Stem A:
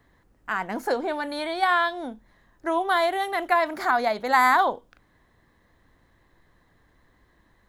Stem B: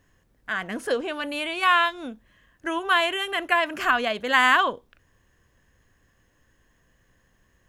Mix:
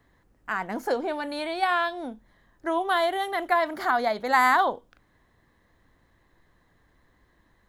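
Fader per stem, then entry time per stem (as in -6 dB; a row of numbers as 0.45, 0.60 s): -2.0, -18.5 dB; 0.00, 0.00 s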